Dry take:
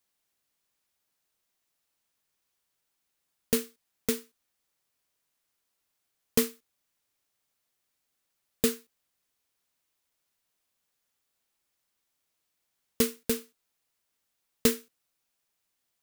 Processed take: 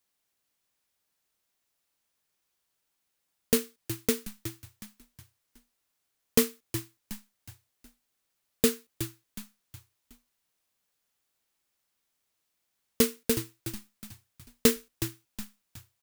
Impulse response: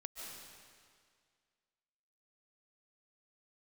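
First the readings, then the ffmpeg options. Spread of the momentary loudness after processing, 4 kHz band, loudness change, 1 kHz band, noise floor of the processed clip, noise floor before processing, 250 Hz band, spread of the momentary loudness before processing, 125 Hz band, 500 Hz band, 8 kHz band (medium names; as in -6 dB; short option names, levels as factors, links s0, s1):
21 LU, +2.5 dB, +0.5 dB, +2.5 dB, -80 dBFS, -80 dBFS, +2.5 dB, 8 LU, +6.5 dB, +2.0 dB, +2.5 dB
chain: -filter_complex "[0:a]asplit=2[s0][s1];[s1]acrusher=bits=3:mix=0:aa=0.5,volume=0.266[s2];[s0][s2]amix=inputs=2:normalize=0,asplit=5[s3][s4][s5][s6][s7];[s4]adelay=367,afreqshift=-120,volume=0.299[s8];[s5]adelay=734,afreqshift=-240,volume=0.126[s9];[s6]adelay=1101,afreqshift=-360,volume=0.0525[s10];[s7]adelay=1468,afreqshift=-480,volume=0.0221[s11];[s3][s8][s9][s10][s11]amix=inputs=5:normalize=0"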